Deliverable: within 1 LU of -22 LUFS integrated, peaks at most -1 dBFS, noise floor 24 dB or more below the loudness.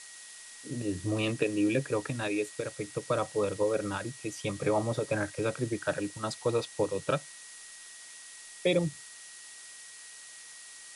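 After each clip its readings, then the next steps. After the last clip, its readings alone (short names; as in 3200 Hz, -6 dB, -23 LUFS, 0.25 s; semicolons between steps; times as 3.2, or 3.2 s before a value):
steady tone 1900 Hz; tone level -54 dBFS; noise floor -49 dBFS; noise floor target -56 dBFS; loudness -31.5 LUFS; peak -14.5 dBFS; loudness target -22.0 LUFS
-> notch 1900 Hz, Q 30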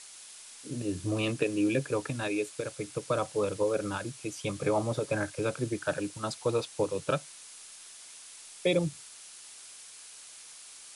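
steady tone none; noise floor -49 dBFS; noise floor target -56 dBFS
-> denoiser 7 dB, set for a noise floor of -49 dBFS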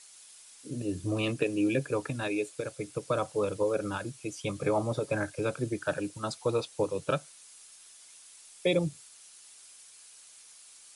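noise floor -54 dBFS; noise floor target -56 dBFS
-> denoiser 6 dB, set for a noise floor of -54 dBFS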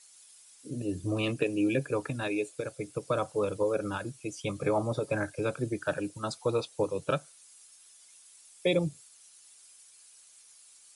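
noise floor -57 dBFS; loudness -32.0 LUFS; peak -15.0 dBFS; loudness target -22.0 LUFS
-> gain +10 dB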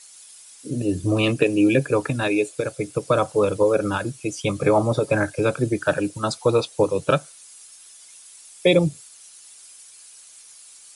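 loudness -22.0 LUFS; peak -5.0 dBFS; noise floor -47 dBFS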